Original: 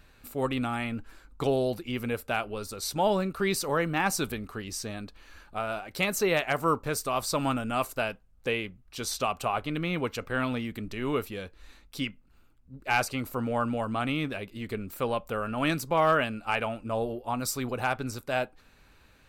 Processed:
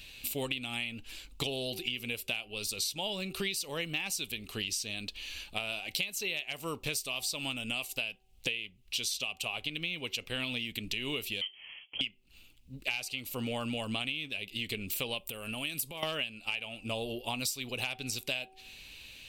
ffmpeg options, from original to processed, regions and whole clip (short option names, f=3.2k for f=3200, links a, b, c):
-filter_complex "[0:a]asettb=1/sr,asplit=3[a][b][c];[a]atrim=end=11.414[d];[b]atrim=start=11.41:end=12.01,asetpts=PTS-STARTPTS,afade=t=in:d=0.004:c=qsin,afade=t=out:st=0.596:d=0.004:c=qsin,highpass=f=390:w=0.5412,highpass=f=390:w=1.3066,lowpass=f=3.1k:t=q:w=0.5098,lowpass=f=3.1k:t=q:w=0.6013,lowpass=f=3.1k:t=q:w=0.9,lowpass=f=3.1k:t=q:w=2.563,afreqshift=-3600[e];[c]atrim=start=12.006[f];[d][e]acrossfade=d=0.004:c1=hsin:c2=qsin[g];[g][f]acrossfade=d=0.004:c1=qsin:c2=hsin,asettb=1/sr,asplit=3[h][i][j];[h]atrim=end=15.184[k];[i]atrim=start=15.18:end=16.03,asetpts=PTS-STARTPTS,afade=t=in:d=0.004:c=qsin,afade=t=out:st=0.846:d=0.004:c=qsin,acompressor=threshold=-36dB:ratio=10:attack=3.2:release=140:knee=1:detection=peak,highshelf=f=7.7k:t=q:w=1.5:g=7.5[l];[j]atrim=start=16.026[m];[k][l]acrossfade=d=0.004:c1=hsin:c2=qsin[n];[n][m]acrossfade=d=0.004:c1=qsin:c2=hsin,highshelf=f=2k:t=q:w=3:g=12,bandreject=f=380.5:t=h:w=4,bandreject=f=761:t=h:w=4,acompressor=threshold=-31dB:ratio=16"